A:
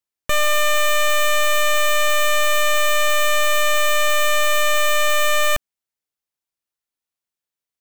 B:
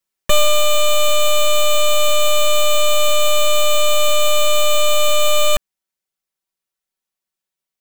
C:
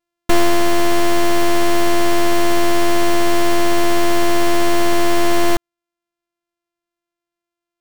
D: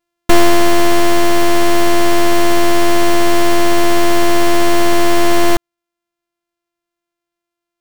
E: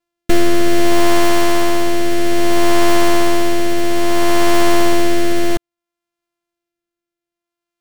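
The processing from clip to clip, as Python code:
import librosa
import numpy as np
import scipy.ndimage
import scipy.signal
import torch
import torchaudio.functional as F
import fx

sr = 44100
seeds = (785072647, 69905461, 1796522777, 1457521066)

y1 = x + 0.92 * np.pad(x, (int(5.3 * sr / 1000.0), 0))[:len(x)]
y1 = fx.rider(y1, sr, range_db=10, speed_s=0.5)
y2 = np.r_[np.sort(y1[:len(y1) // 128 * 128].reshape(-1, 128), axis=1).ravel(), y1[len(y1) // 128 * 128:]]
y3 = fx.rider(y2, sr, range_db=10, speed_s=2.0)
y3 = y3 * librosa.db_to_amplitude(3.5)
y4 = fx.rotary(y3, sr, hz=0.6)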